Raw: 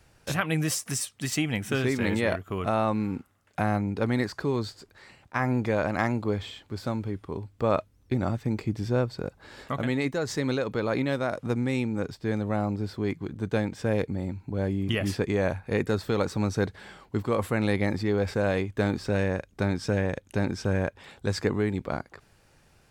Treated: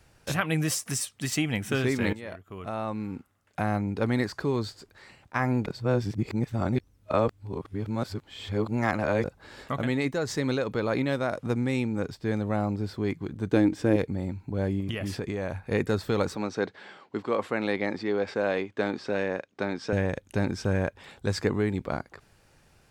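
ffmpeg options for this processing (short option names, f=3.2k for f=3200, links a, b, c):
-filter_complex "[0:a]asettb=1/sr,asplit=3[a][b][c];[a]atrim=end=13.504[d];[b]atrim=start=13.5:end=13.96,asetpts=PTS-STARTPTS,afade=t=in:d=0.004:c=qsin,afade=t=out:st=0.456:d=0.004:c=qsin,equalizer=f=310:w=3.7:g=14.5[e];[c]atrim=start=13.956[f];[d][e]acrossfade=d=0.004:c1=hsin:c2=qsin[g];[g][f]acrossfade=d=0.004:c1=qsin:c2=hsin,asettb=1/sr,asplit=3[h][i][j];[h]atrim=end=14.804[k];[i]atrim=start=14.8:end=15.61,asetpts=PTS-STARTPTS,afade=t=in:d=0.004:c=qsin,afade=t=out:st=0.806:d=0.004:c=qsin,acompressor=threshold=-27dB:ratio=6:attack=3.2:release=140:knee=1:detection=peak[l];[j]atrim=start=15.606[m];[k][l]acrossfade=d=0.004:c1=hsin:c2=qsin[n];[n][m]acrossfade=d=0.004:c1=qsin:c2=hsin,asettb=1/sr,asplit=3[o][p][q];[o]atrim=end=16.354[r];[p]atrim=start=16.35:end=19.93,asetpts=PTS-STARTPTS,afade=t=in:d=0.004:c=qsin,afade=t=out:st=3.576:d=0.004:c=qsin,highpass=260,lowpass=5k[s];[q]atrim=start=19.926[t];[r][s]acrossfade=d=0.004:c1=hsin:c2=qsin[u];[u][t]acrossfade=d=0.004:c1=qsin:c2=hsin,asplit=4[v][w][x][y];[v]atrim=end=2.13,asetpts=PTS-STARTPTS,afade=t=out:st=2.126:d=0.004:c=hsin:silence=0.149624[z];[w]atrim=start=2.13:end=5.662,asetpts=PTS-STARTPTS,afade=t=in:d=1.93:silence=0.149624[aa];[x]atrim=start=5.658:end=9.242,asetpts=PTS-STARTPTS,areverse[ab];[y]atrim=start=9.238[ac];[z][aa]concat=n=2:v=0:a=1[ad];[ad][ab]acrossfade=d=0.004:c1=hsin:c2=hsin[ae];[ae][ac]acrossfade=d=0.004:c1=hsin:c2=hsin"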